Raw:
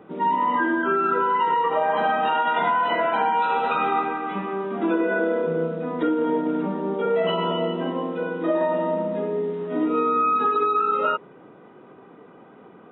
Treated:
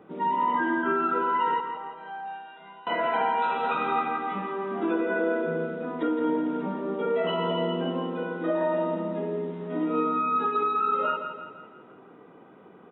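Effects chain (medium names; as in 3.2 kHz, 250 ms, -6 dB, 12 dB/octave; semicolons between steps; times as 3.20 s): 1.60–2.87 s: chord resonator C3 major, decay 0.77 s; feedback delay 167 ms, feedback 49%, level -8 dB; trim -4.5 dB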